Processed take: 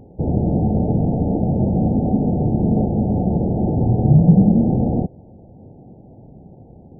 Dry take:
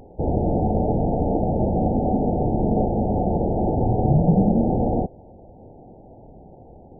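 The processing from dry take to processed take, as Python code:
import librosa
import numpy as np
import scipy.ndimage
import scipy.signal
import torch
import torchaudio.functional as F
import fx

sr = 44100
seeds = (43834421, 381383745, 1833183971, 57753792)

y = fx.peak_eq(x, sr, hz=150.0, db=14.5, octaves=2.8)
y = y * librosa.db_to_amplitude(-7.5)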